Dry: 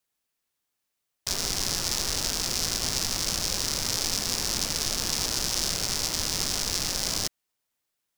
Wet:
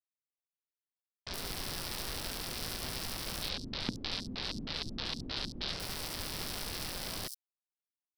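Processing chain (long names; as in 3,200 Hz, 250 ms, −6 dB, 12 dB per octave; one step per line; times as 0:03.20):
mu-law and A-law mismatch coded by A
parametric band 6,700 Hz −14 dB 0.53 octaves
0:03.42–0:05.73: auto-filter low-pass square 3.2 Hz 250–4,000 Hz
multiband delay without the direct sound lows, highs 70 ms, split 5,700 Hz
level −5.5 dB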